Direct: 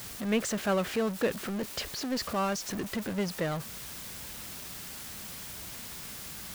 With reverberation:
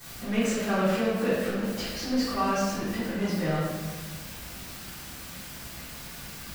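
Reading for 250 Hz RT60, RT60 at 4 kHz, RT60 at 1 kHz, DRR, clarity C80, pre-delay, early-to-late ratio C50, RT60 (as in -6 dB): 1.9 s, 1.0 s, 1.3 s, -14.0 dB, 1.0 dB, 3 ms, -2.0 dB, 1.4 s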